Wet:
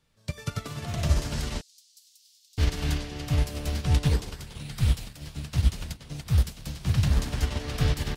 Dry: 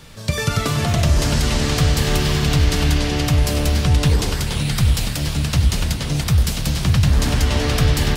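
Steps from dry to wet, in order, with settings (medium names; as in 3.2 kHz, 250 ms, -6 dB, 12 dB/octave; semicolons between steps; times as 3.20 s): 1.61–2.58 s: inverse Chebyshev high-pass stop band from 770 Hz, stop band 80 dB; upward expansion 2.5:1, over -27 dBFS; trim -4 dB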